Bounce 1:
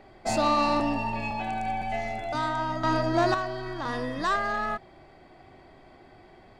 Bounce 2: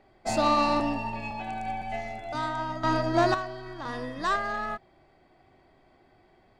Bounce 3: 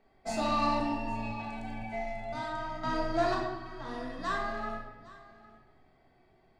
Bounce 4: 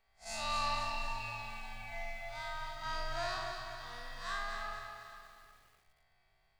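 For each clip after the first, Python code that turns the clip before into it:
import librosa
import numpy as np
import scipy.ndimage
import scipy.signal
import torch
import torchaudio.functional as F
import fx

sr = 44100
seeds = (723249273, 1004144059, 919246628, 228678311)

y1 = fx.upward_expand(x, sr, threshold_db=-40.0, expansion=1.5)
y1 = y1 * librosa.db_to_amplitude(1.5)
y2 = y1 + 10.0 ** (-20.0 / 20.0) * np.pad(y1, (int(808 * sr / 1000.0), 0))[:len(y1)]
y2 = fx.room_shoebox(y2, sr, seeds[0], volume_m3=460.0, walls='mixed', distance_m=1.6)
y2 = y2 * librosa.db_to_amplitude(-9.0)
y3 = fx.spec_blur(y2, sr, span_ms=95.0)
y3 = fx.tone_stack(y3, sr, knobs='10-0-10')
y3 = fx.echo_crushed(y3, sr, ms=240, feedback_pct=55, bits=11, wet_db=-6)
y3 = y3 * librosa.db_to_amplitude(3.5)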